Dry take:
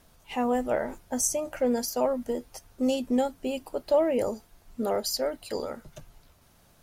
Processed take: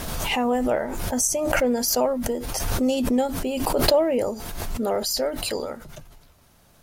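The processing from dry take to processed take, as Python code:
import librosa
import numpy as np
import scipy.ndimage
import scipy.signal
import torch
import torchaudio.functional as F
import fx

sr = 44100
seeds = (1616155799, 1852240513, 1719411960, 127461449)

y = fx.pre_swell(x, sr, db_per_s=26.0)
y = F.gain(torch.from_numpy(y), 3.0).numpy()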